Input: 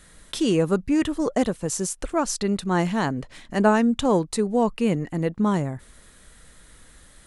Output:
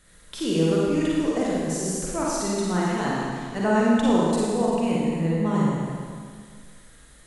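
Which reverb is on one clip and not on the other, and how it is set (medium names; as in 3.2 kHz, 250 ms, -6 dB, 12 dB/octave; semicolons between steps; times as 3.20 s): Schroeder reverb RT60 2 s, DRR -6 dB; trim -7.5 dB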